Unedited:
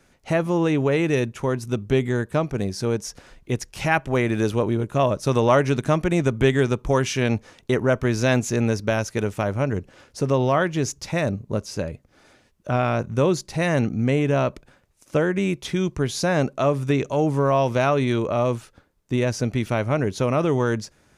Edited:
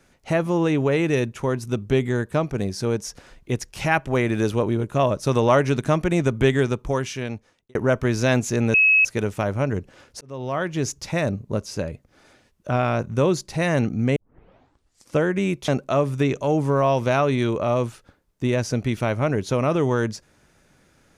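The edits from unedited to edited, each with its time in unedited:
6.53–7.75 fade out
8.74–9.05 bleep 2570 Hz -12.5 dBFS
10.21–10.88 fade in linear
14.16 tape start 1.00 s
15.68–16.37 cut

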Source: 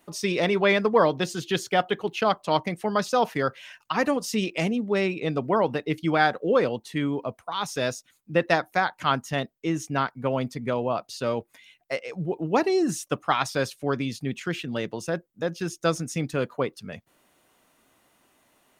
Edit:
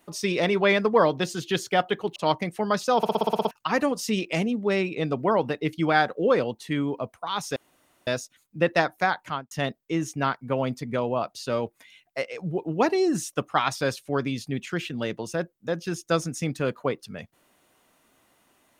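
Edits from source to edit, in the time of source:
2.16–2.41 cut
3.22 stutter in place 0.06 s, 9 plays
7.81 insert room tone 0.51 s
8.94–9.25 studio fade out

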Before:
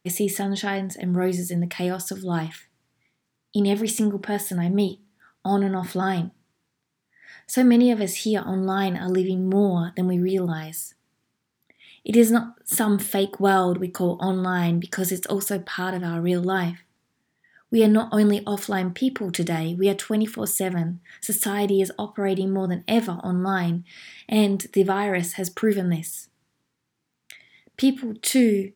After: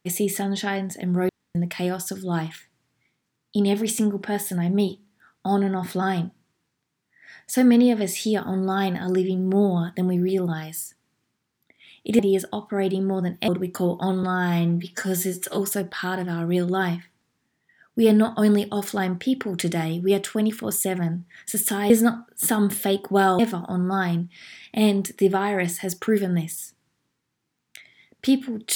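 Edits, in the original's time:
1.29–1.55 room tone
12.19–13.68 swap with 21.65–22.94
14.43–15.33 stretch 1.5×

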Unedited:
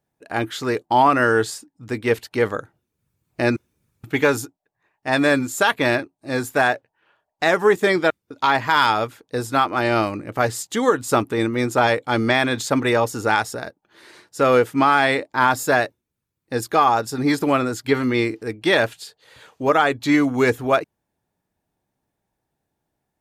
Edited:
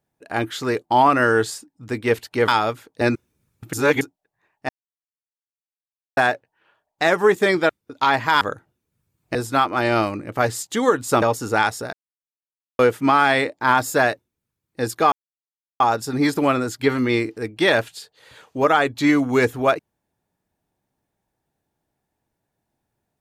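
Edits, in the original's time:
2.48–3.42 swap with 8.82–9.35
4.14–4.42 reverse
5.1–6.58 mute
11.22–12.95 cut
13.66–14.52 mute
16.85 insert silence 0.68 s

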